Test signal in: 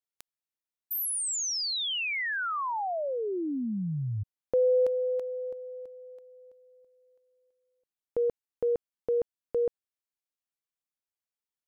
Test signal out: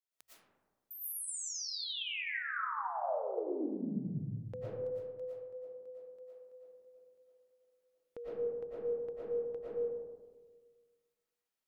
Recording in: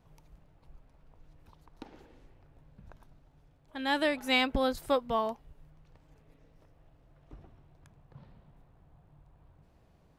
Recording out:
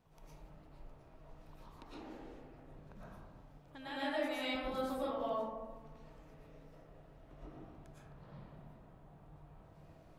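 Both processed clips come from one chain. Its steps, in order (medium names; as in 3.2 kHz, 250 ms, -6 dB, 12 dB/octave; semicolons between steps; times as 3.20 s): bass shelf 110 Hz -6.5 dB; hum notches 60/120 Hz; compression 2:1, threshold -52 dBFS; algorithmic reverb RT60 1.5 s, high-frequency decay 0.3×, pre-delay 75 ms, DRR -10 dB; trim -5 dB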